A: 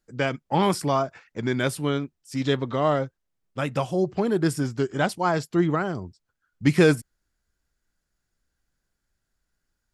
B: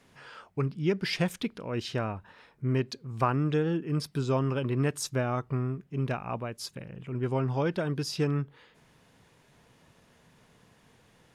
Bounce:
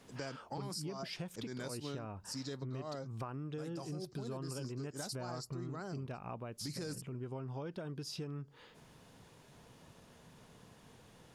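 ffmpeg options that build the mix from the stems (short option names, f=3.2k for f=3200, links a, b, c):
-filter_complex "[0:a]highshelf=f=3.6k:t=q:w=3:g=8.5,bandreject=f=3.4k:w=8.1,alimiter=limit=-14dB:level=0:latency=1:release=14,volume=-9.5dB[a];[1:a]equalizer=f=2k:t=o:w=0.89:g=-5,acompressor=threshold=-41dB:ratio=2,volume=2dB,asplit=2[b][c];[c]apad=whole_len=438106[d];[a][d]sidechaincompress=threshold=-38dB:ratio=8:attack=25:release=181[e];[e][b]amix=inputs=2:normalize=0,acompressor=threshold=-43dB:ratio=2.5"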